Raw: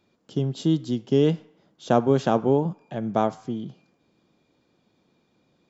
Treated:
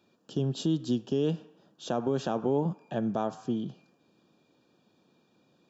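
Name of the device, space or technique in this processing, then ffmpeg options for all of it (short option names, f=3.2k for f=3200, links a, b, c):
PA system with an anti-feedback notch: -af "highpass=120,asuperstop=centerf=2100:order=8:qfactor=5.1,alimiter=limit=-18.5dB:level=0:latency=1:release=144"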